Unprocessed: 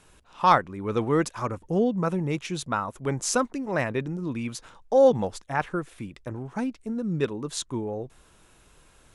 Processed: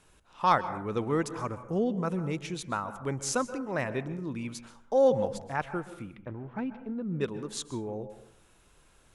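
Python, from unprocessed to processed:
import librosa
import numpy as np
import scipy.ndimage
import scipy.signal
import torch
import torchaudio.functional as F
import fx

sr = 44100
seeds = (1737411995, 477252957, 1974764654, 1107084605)

y = fx.lowpass(x, sr, hz=3200.0, slope=24, at=(6.02, 7.21))
y = fx.rev_plate(y, sr, seeds[0], rt60_s=0.67, hf_ratio=0.4, predelay_ms=115, drr_db=12.5)
y = y * 10.0 ** (-5.0 / 20.0)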